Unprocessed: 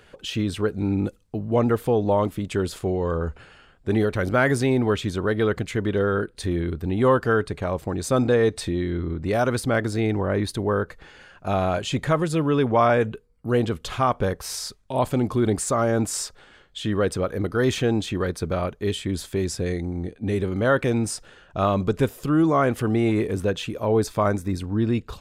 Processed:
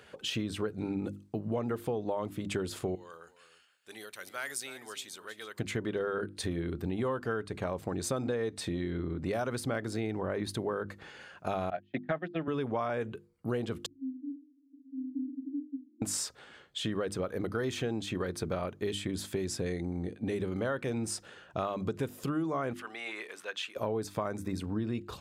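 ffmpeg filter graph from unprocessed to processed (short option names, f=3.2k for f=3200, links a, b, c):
-filter_complex "[0:a]asettb=1/sr,asplit=3[a][b][c];[a]atrim=end=2.954[d];[b]atrim=start=2.95:end=5.59,asetpts=PTS-STARTPTS,afade=t=in:d=0.004:c=qsin,afade=t=out:st=2.636:d=0.004:c=qsin,aderivative,aecho=1:1:318:0.188,atrim=end_sample=116424[e];[c]atrim=start=5.586[f];[d][e]acrossfade=d=0.004:c1=hsin:c2=qsin[g];[g][f]acrossfade=d=0.004:c1=qsin:c2=hsin,asettb=1/sr,asplit=3[h][i][j];[h]atrim=end=11.704[k];[i]atrim=start=11.7:end=12.48,asetpts=PTS-STARTPTS,afade=t=in:d=0.004:c=qsin,afade=t=out:st=0.776:d=0.004:c=qsin,agate=range=-42dB:threshold=-23dB:ratio=16:release=100:detection=peak,highpass=f=150:w=0.5412,highpass=f=150:w=1.3066,equalizer=f=460:t=q:w=4:g=-5,equalizer=f=710:t=q:w=4:g=10,equalizer=f=1k:t=q:w=4:g=-9,equalizer=f=1.8k:t=q:w=4:g=9,lowpass=f=3.9k:w=0.5412,lowpass=f=3.9k:w=1.3066[l];[j]atrim=start=12.476[m];[k][l]acrossfade=d=0.004:c1=hsin:c2=qsin[n];[n][m]acrossfade=d=0.004:c1=qsin:c2=hsin,asettb=1/sr,asplit=3[o][p][q];[o]atrim=end=13.864[r];[p]atrim=start=13.86:end=16.02,asetpts=PTS-STARTPTS,afade=t=in:d=0.004:c=qsin,afade=t=out:st=2.156:d=0.004:c=qsin,aeval=exprs='val(0)+0.5*0.0473*sgn(val(0))':c=same,asuperpass=centerf=280:order=12:qfactor=5.6[s];[q]atrim=start=16.016[t];[r][s]acrossfade=d=0.004:c1=hsin:c2=qsin[u];[u][t]acrossfade=d=0.004:c1=qsin:c2=hsin,asettb=1/sr,asplit=3[v][w][x];[v]atrim=end=22.734[y];[w]atrim=start=22.73:end=23.76,asetpts=PTS-STARTPTS,afade=t=in:d=0.004:c=qsin,afade=t=out:st=1.026:d=0.004:c=qsin,highpass=1.3k,highshelf=f=6.6k:g=-11[z];[x]atrim=start=23.756[aa];[y][z]acrossfade=d=0.004:c1=hsin:c2=qsin[ab];[ab][aa]acrossfade=d=0.004:c1=qsin:c2=hsin,highpass=100,bandreject=f=50:t=h:w=6,bandreject=f=100:t=h:w=6,bandreject=f=150:t=h:w=6,bandreject=f=200:t=h:w=6,bandreject=f=250:t=h:w=6,bandreject=f=300:t=h:w=6,bandreject=f=350:t=h:w=6,acompressor=threshold=-28dB:ratio=6,volume=-2dB"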